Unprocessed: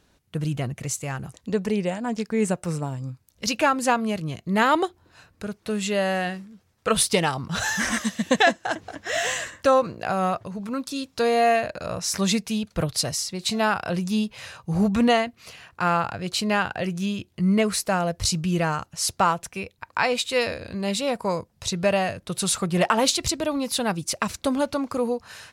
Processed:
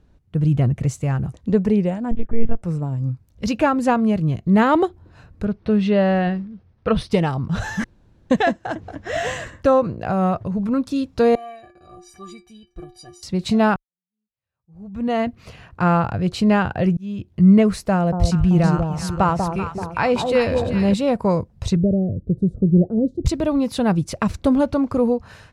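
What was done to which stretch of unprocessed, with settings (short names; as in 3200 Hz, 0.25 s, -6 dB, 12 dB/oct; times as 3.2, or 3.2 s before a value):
2.11–2.62 monotone LPC vocoder at 8 kHz 230 Hz
5.45–7.11 polynomial smoothing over 15 samples
7.84–8.3 room tone
11.35–13.23 metallic resonator 350 Hz, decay 0.33 s, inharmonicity 0.03
13.76–15.25 fade in exponential
16.97–17.4 fade in
17.93–20.94 echo with dull and thin repeats by turns 0.192 s, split 1000 Hz, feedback 64%, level -4.5 dB
21.76–23.26 inverse Chebyshev low-pass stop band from 920 Hz
whole clip: tilt -3.5 dB/oct; AGC gain up to 6 dB; gain -3 dB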